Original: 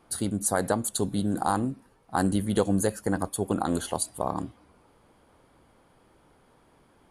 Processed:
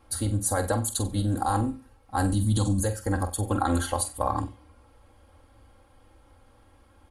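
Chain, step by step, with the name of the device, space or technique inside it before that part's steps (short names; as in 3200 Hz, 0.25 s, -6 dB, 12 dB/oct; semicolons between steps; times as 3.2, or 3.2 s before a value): 2.34–2.8 ten-band EQ 125 Hz +8 dB, 250 Hz +11 dB, 500 Hz -10 dB, 1000 Hz +6 dB, 2000 Hz -11 dB, 4000 Hz +10 dB, 8000 Hz +10 dB; car stereo with a boomy subwoofer (resonant low shelf 140 Hz +8 dB, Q 3; limiter -14.5 dBFS, peak gain reduction 11 dB); flutter echo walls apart 7.9 m, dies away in 0.28 s; 3.5–4.4 dynamic EQ 1500 Hz, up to +6 dB, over -45 dBFS, Q 1; comb 3.7 ms, depth 82%; gain -1.5 dB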